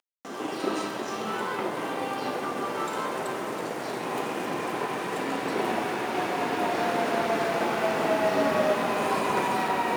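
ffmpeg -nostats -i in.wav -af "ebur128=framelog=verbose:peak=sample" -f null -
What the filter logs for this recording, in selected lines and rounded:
Integrated loudness:
  I:         -28.0 LUFS
  Threshold: -38.1 LUFS
Loudness range:
  LRA:         5.4 LU
  Threshold: -48.4 LUFS
  LRA low:   -30.9 LUFS
  LRA high:  -25.5 LUFS
Sample peak:
  Peak:      -12.7 dBFS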